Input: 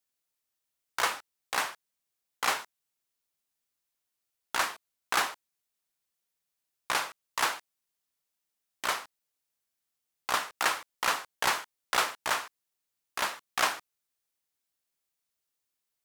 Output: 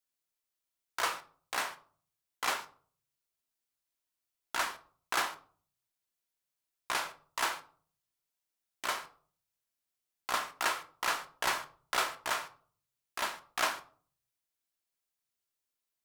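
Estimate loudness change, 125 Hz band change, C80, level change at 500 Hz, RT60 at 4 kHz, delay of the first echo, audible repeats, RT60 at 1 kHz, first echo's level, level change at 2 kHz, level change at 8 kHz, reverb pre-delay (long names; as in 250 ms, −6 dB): −4.0 dB, −4.5 dB, 20.5 dB, −3.0 dB, 0.30 s, no echo audible, no echo audible, 0.45 s, no echo audible, −4.0 dB, −4.0 dB, 3 ms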